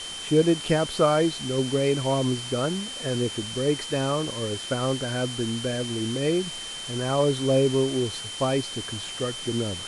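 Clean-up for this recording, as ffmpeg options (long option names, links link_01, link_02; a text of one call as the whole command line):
ffmpeg -i in.wav -af "bandreject=frequency=3100:width=30,afftdn=noise_reduction=30:noise_floor=-36" out.wav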